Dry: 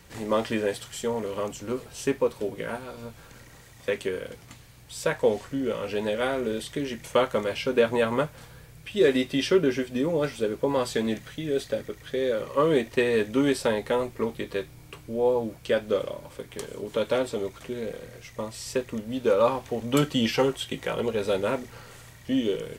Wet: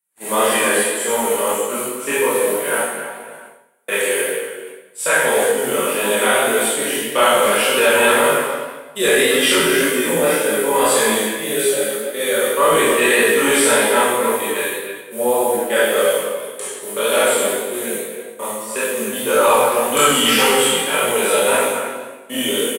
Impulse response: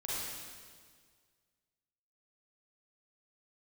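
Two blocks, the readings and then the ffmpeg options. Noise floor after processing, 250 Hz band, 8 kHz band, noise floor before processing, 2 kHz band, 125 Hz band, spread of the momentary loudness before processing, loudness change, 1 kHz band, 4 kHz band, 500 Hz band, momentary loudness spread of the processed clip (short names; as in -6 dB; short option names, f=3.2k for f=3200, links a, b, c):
-38 dBFS, +4.0 dB, +23.0 dB, -50 dBFS, +16.5 dB, -1.5 dB, 13 LU, +11.0 dB, +14.5 dB, +15.0 dB, +8.5 dB, 12 LU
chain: -filter_complex "[0:a]highshelf=f=7.3k:t=q:w=3:g=12.5,acrossover=split=6900[a][b];[b]acompressor=threshold=-40dB:ratio=4:attack=1:release=60[c];[a][c]amix=inputs=2:normalize=0,agate=range=-45dB:threshold=-33dB:ratio=16:detection=peak,acrossover=split=140|1000[d][e][f];[d]acrusher=bits=2:mix=0:aa=0.5[g];[g][e][f]amix=inputs=3:normalize=0,asplit=2[h][i];[i]adelay=270,highpass=300,lowpass=3.4k,asoftclip=type=hard:threshold=-18dB,volume=-10dB[j];[h][j]amix=inputs=2:normalize=0[k];[1:a]atrim=start_sample=2205,asetrate=66150,aresample=44100[l];[k][l]afir=irnorm=-1:irlink=0,flanger=delay=19:depth=5.4:speed=1.8,apsyclip=22dB,tiltshelf=f=670:g=-7.5,areverse,acompressor=mode=upward:threshold=-21dB:ratio=2.5,areverse,volume=-7.5dB"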